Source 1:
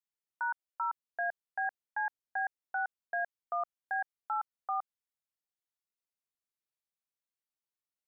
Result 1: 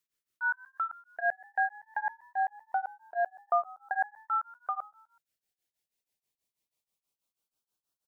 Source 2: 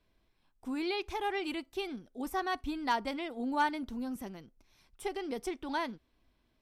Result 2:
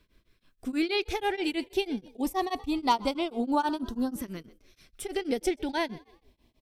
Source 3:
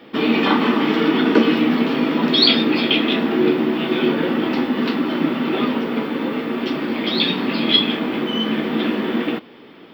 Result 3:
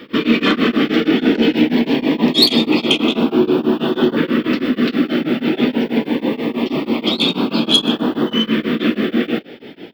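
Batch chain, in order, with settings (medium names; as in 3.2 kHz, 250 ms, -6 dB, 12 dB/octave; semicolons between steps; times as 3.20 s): in parallel at -2.5 dB: compression, threshold -30 dBFS; on the sum: saturation -7 dBFS; LFO notch saw up 0.24 Hz 750–2400 Hz; frequency-shifting echo 125 ms, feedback 40%, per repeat +57 Hz, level -21.5 dB; tremolo of two beating tones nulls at 6.2 Hz; trim +5.5 dB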